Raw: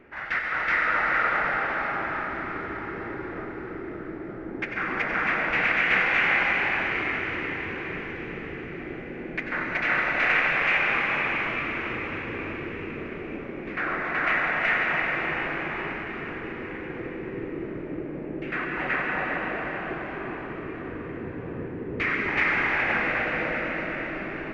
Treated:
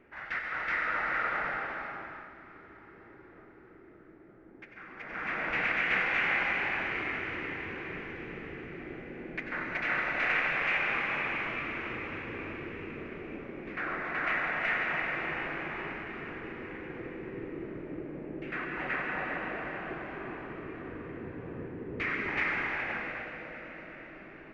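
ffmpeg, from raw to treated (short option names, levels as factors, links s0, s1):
-af "volume=1.78,afade=t=out:st=1.46:d=0.88:silence=0.266073,afade=t=in:st=4.97:d=0.52:silence=0.237137,afade=t=out:st=22.34:d=1.05:silence=0.354813"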